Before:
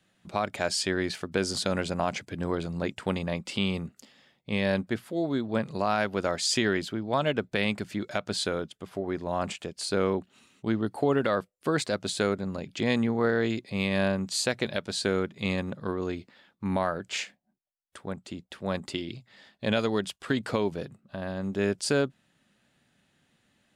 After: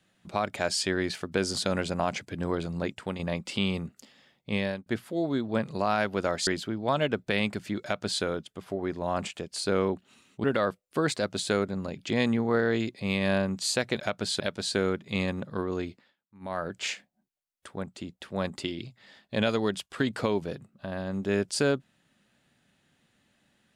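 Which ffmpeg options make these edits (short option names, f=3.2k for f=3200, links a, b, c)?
-filter_complex "[0:a]asplit=9[a][b][c][d][e][f][g][h][i];[a]atrim=end=3.19,asetpts=PTS-STARTPTS,afade=t=out:st=2.79:d=0.4:silence=0.446684[j];[b]atrim=start=3.19:end=4.86,asetpts=PTS-STARTPTS,afade=t=in:d=0.004:c=hsin:silence=0.446684,afade=t=out:st=1.37:d=0.3[k];[c]atrim=start=4.86:end=6.472,asetpts=PTS-STARTPTS,afade=t=in:d=0.004:c=hsin[l];[d]atrim=start=6.718:end=10.692[m];[e]atrim=start=11.138:end=14.702[n];[f]atrim=start=8.078:end=8.482[o];[g]atrim=start=14.698:end=16.46,asetpts=PTS-STARTPTS,afade=t=out:st=1.482:d=0.28:silence=0.0707946[p];[h]atrim=start=16.46:end=16.7,asetpts=PTS-STARTPTS,volume=-23dB[q];[i]atrim=start=16.7,asetpts=PTS-STARTPTS,afade=t=in:d=0.28:silence=0.0707946[r];[j][k][l]concat=n=3:v=0:a=1[s];[s][m]acrossfade=d=0.004:c1=hsin:c2=hsin[t];[t][n]acrossfade=d=0.004:c1=hsin:c2=hsin[u];[u][o]acrossfade=d=0.004:c1=hsin:c2=hsin[v];[p][q][r]concat=n=3:v=0:a=1[w];[v][w]acrossfade=d=0.004:c1=hsin:c2=hsin"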